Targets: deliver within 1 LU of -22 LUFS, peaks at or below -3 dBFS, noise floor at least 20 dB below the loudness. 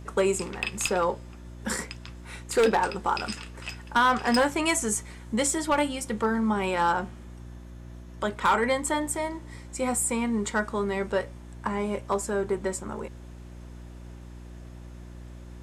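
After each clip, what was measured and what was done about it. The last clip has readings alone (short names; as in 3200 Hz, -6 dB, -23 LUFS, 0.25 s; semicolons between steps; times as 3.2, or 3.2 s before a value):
clipped 0.4%; flat tops at -15.5 dBFS; hum 60 Hz; harmonics up to 360 Hz; hum level -41 dBFS; loudness -27.0 LUFS; peak -15.5 dBFS; loudness target -22.0 LUFS
-> clip repair -15.5 dBFS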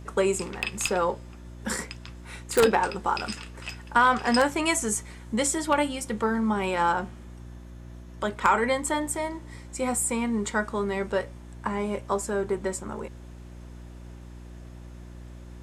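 clipped 0.0%; hum 60 Hz; harmonics up to 360 Hz; hum level -41 dBFS
-> de-hum 60 Hz, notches 6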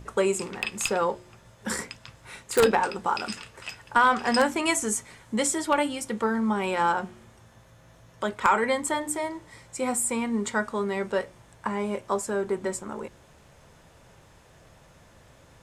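hum none; loudness -26.5 LUFS; peak -6.5 dBFS; loudness target -22.0 LUFS
-> gain +4.5 dB; limiter -3 dBFS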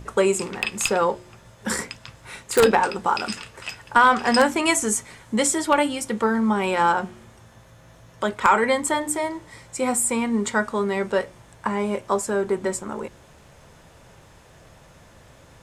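loudness -22.0 LUFS; peak -3.0 dBFS; noise floor -51 dBFS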